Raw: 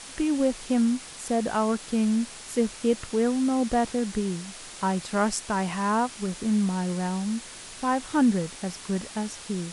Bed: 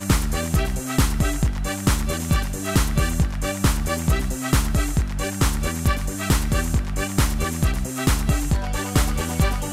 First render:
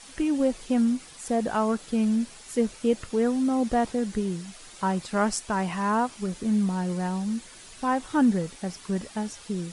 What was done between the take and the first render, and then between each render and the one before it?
denoiser 8 dB, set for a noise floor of -43 dBFS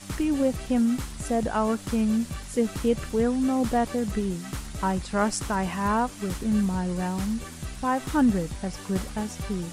add bed -15.5 dB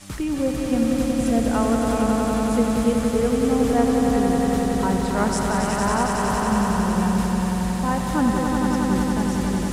swelling echo 92 ms, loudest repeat 5, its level -5.5 dB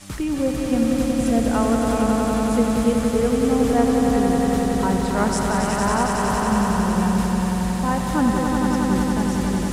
gain +1 dB

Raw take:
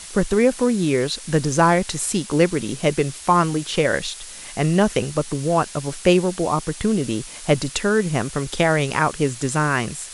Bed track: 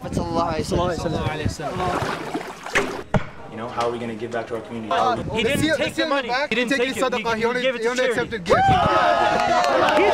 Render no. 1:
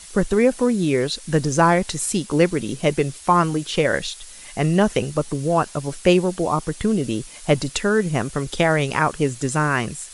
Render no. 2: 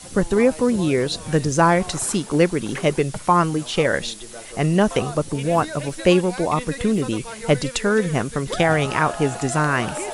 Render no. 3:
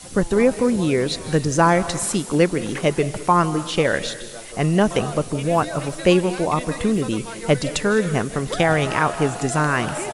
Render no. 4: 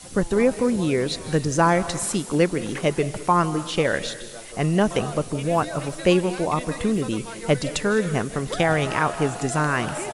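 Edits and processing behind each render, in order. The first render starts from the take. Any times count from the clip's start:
denoiser 6 dB, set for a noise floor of -38 dBFS
add bed track -13 dB
outdoor echo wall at 220 m, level -28 dB; digital reverb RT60 0.75 s, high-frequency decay 1×, pre-delay 0.12 s, DRR 13.5 dB
gain -2.5 dB

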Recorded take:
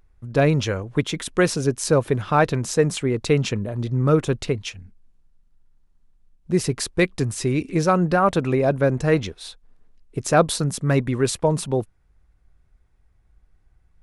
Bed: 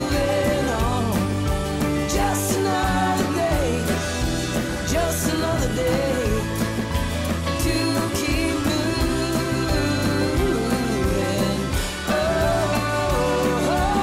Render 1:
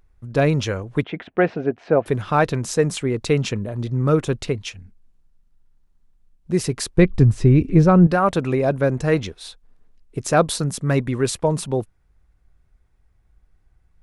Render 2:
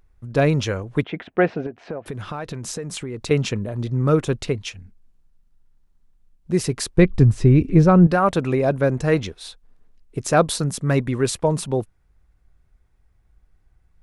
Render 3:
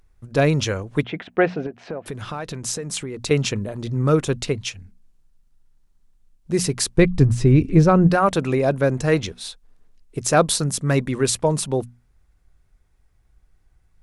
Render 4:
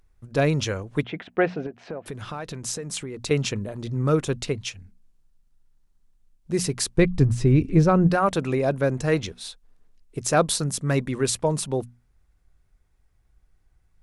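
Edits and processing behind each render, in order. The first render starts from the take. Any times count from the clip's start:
1.04–2.06 speaker cabinet 110–2500 Hz, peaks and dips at 130 Hz -8 dB, 710 Hz +10 dB, 1100 Hz -5 dB; 6.98–8.07 RIAA curve playback
1.66–3.31 compressor 8:1, threshold -26 dBFS
bell 8000 Hz +5.5 dB 2.3 oct; notches 60/120/180/240 Hz
gain -3.5 dB

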